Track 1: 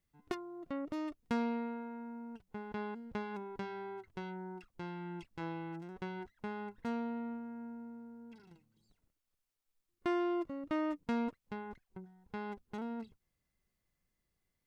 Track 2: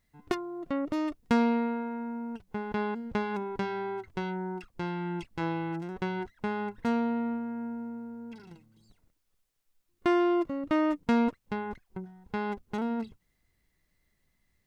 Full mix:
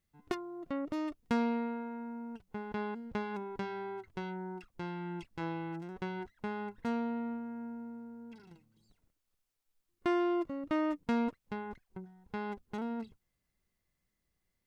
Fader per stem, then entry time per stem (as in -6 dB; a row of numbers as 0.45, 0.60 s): 0.0, -16.0 dB; 0.00, 0.00 s